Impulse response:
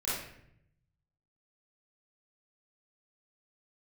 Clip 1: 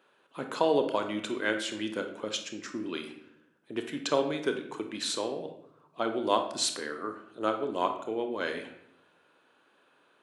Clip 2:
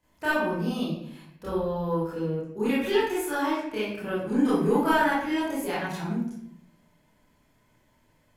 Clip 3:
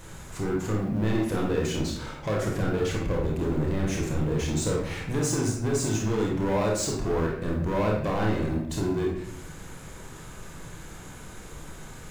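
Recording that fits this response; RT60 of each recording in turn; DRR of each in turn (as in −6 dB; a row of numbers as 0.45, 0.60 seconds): 2; 0.75, 0.70, 0.70 seconds; 5.5, −11.0, −2.0 decibels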